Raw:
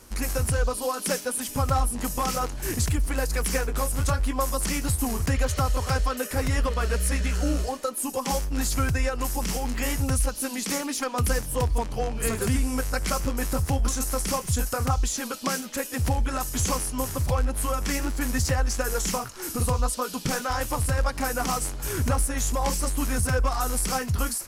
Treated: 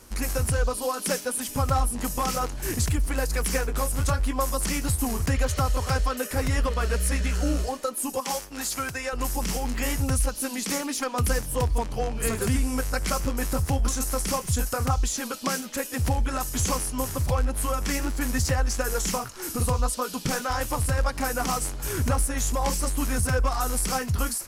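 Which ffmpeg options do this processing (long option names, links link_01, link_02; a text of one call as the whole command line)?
ffmpeg -i in.wav -filter_complex "[0:a]asettb=1/sr,asplit=3[link_01][link_02][link_03];[link_01]atrim=end=8.204[link_04];[link_02]atrim=start=8.2:end=9.13,asetpts=PTS-STARTPTS,afade=type=in:duration=0.004:curve=qsin,afade=type=out:start_time=0.926:duration=0.004:curve=qsin,highpass=frequency=540:poles=1[link_05];[link_03]atrim=start=9.126[link_06];[link_04][link_05]acrossfade=duration=0.004:curve1=hsin:curve2=qsin[link_07];[link_07][link_06]acrossfade=duration=0.004:curve1=qsin:curve2=hsin" out.wav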